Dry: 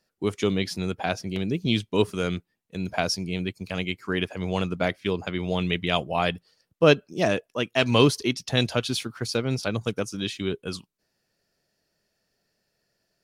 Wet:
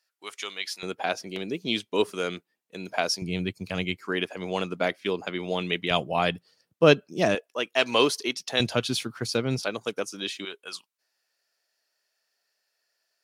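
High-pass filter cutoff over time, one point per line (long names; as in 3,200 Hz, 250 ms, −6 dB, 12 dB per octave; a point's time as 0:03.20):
1,200 Hz
from 0:00.83 320 Hz
from 0:03.22 80 Hz
from 0:03.97 250 Hz
from 0:05.91 120 Hz
from 0:07.35 400 Hz
from 0:08.60 110 Hz
from 0:09.62 350 Hz
from 0:10.45 860 Hz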